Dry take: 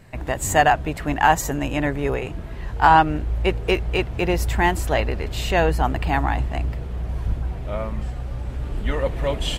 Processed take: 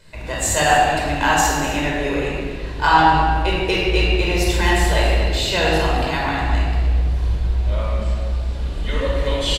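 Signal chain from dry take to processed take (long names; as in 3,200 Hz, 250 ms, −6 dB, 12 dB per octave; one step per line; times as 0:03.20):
graphic EQ with 10 bands 125 Hz −8 dB, 4,000 Hz +11 dB, 8,000 Hz +6 dB
single-tap delay 244 ms −13 dB
rectangular room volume 2,300 cubic metres, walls mixed, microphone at 5 metres
level −6.5 dB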